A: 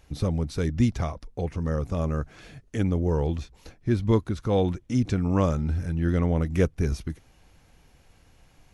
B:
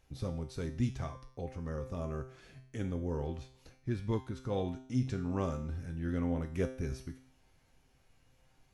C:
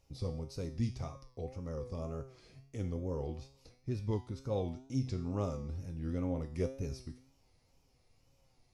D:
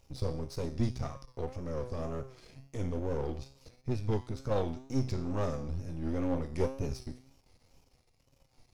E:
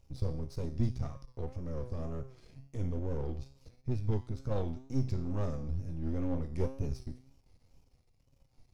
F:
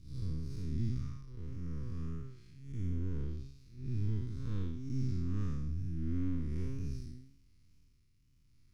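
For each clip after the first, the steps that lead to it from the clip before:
feedback comb 130 Hz, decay 0.56 s, harmonics all, mix 80%
graphic EQ with 31 bands 100 Hz +5 dB, 500 Hz +4 dB, 1.6 kHz -12 dB, 3.15 kHz -4 dB, 5 kHz +9 dB; wow and flutter 90 cents; trim -3 dB
partial rectifier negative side -12 dB; trim +7.5 dB
bass shelf 270 Hz +10 dB; trim -7.5 dB
spectral blur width 189 ms; Butterworth band-stop 660 Hz, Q 0.67; endings held to a fixed fall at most 130 dB/s; trim +1 dB

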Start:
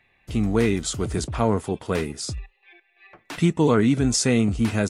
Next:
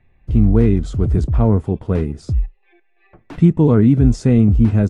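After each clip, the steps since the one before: tilt EQ -4.5 dB/octave; trim -2.5 dB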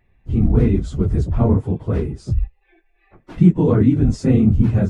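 phase randomisation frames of 50 ms; trim -2 dB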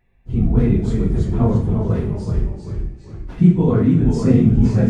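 two-slope reverb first 0.5 s, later 1.6 s, DRR 1.5 dB; ever faster or slower copies 268 ms, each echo -1 st, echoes 3, each echo -6 dB; trim -3 dB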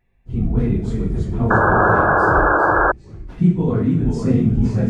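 painted sound noise, 1.50–2.92 s, 290–1700 Hz -12 dBFS; trim -3 dB

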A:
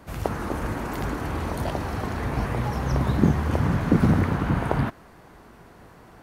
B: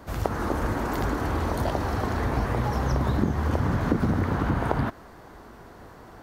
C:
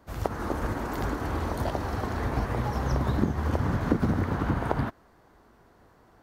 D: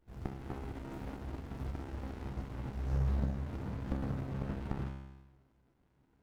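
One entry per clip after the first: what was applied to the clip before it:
fifteen-band graphic EQ 160 Hz -5 dB, 2.5 kHz -5 dB, 10 kHz -5 dB; compression 4:1, threshold -24 dBFS, peak gain reduction 9 dB; trim +3.5 dB
upward expansion 1.5:1, over -43 dBFS
feedback comb 67 Hz, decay 1.1 s, harmonics all, mix 90%; sliding maximum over 65 samples; trim +2 dB

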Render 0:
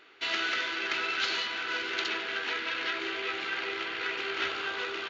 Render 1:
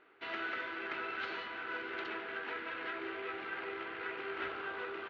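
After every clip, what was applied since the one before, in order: low-pass 1.6 kHz 12 dB/octave; trim -4 dB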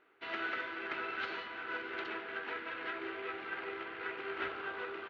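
upward expansion 1.5:1, over -49 dBFS; trim +2 dB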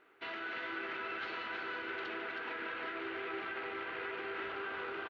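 peak limiter -36 dBFS, peak gain reduction 11 dB; delay 319 ms -5 dB; trim +3 dB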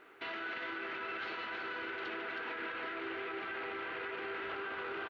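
peak limiter -39.5 dBFS, peak gain reduction 10 dB; trim +7 dB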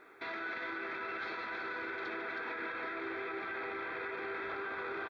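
Butterworth band-stop 2.9 kHz, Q 4.5; trim +1 dB

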